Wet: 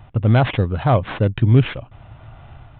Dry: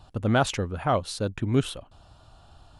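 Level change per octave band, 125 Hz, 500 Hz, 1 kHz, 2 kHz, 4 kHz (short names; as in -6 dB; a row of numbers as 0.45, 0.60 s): +13.0, +5.5, +4.5, +5.0, +1.5 dB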